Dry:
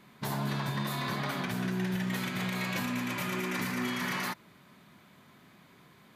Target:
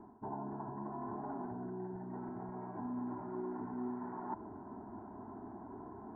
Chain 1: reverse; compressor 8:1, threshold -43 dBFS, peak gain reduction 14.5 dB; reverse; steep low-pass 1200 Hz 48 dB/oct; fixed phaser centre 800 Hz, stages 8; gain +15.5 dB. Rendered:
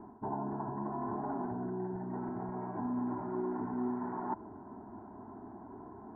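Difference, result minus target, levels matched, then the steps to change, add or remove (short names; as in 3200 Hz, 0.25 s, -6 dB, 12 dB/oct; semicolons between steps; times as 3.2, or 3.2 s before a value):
compressor: peak gain reduction -5 dB
change: compressor 8:1, threshold -49 dBFS, peak gain reduction 19.5 dB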